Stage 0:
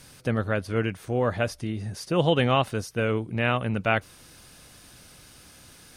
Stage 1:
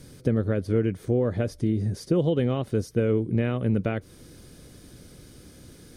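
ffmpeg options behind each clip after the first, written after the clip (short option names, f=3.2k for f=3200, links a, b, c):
-af "bandreject=f=2.7k:w=9.5,acompressor=threshold=-26dB:ratio=5,lowshelf=f=590:t=q:w=1.5:g=10,volume=-3.5dB"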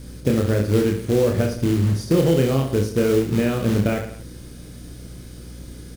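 -af "acrusher=bits=4:mode=log:mix=0:aa=0.000001,aecho=1:1:30|67.5|114.4|173|246.2:0.631|0.398|0.251|0.158|0.1,aeval=exprs='val(0)+0.00891*(sin(2*PI*60*n/s)+sin(2*PI*2*60*n/s)/2+sin(2*PI*3*60*n/s)/3+sin(2*PI*4*60*n/s)/4+sin(2*PI*5*60*n/s)/5)':c=same,volume=3.5dB"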